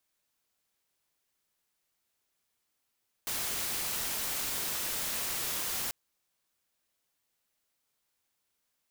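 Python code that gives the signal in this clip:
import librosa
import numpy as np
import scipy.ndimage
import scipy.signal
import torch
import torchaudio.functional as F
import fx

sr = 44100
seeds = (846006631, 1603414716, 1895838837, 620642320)

y = fx.noise_colour(sr, seeds[0], length_s=2.64, colour='white', level_db=-34.0)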